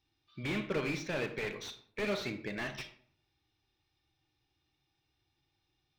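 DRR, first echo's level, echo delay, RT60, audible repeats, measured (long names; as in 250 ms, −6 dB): 9.0 dB, no echo audible, no echo audible, 0.60 s, no echo audible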